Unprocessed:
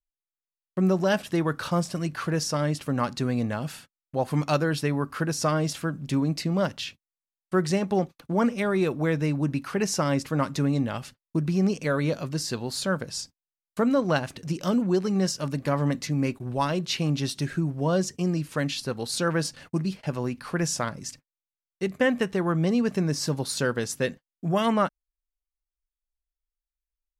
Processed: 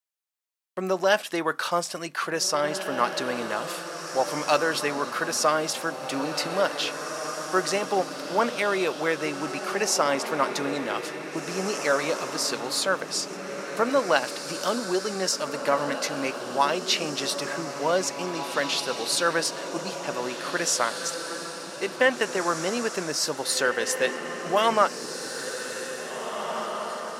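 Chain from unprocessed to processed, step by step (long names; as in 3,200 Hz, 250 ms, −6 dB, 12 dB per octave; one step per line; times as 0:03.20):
high-pass filter 530 Hz 12 dB per octave
on a send: feedback delay with all-pass diffusion 1,960 ms, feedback 41%, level −7 dB
on the sum: level +5 dB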